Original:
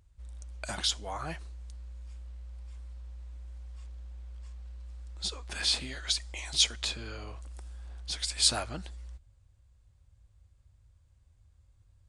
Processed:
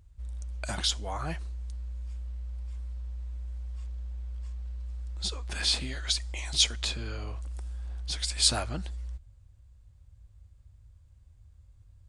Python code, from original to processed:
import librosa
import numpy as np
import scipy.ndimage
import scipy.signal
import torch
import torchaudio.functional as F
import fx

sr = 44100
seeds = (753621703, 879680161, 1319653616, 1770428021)

y = fx.low_shelf(x, sr, hz=200.0, db=6.5)
y = y * 10.0 ** (1.0 / 20.0)